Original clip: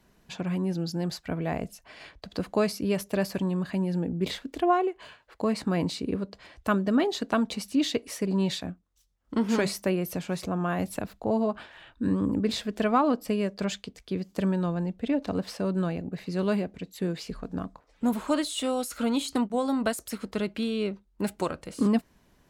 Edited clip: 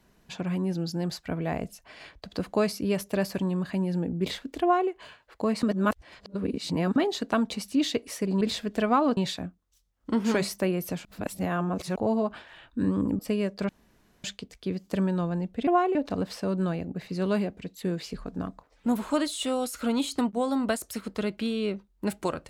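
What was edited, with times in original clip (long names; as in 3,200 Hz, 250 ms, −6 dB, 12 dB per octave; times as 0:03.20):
0:04.62–0:04.90: duplicate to 0:15.12
0:05.63–0:06.96: reverse
0:10.29–0:11.20: reverse
0:12.43–0:13.19: move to 0:08.41
0:13.69: splice in room tone 0.55 s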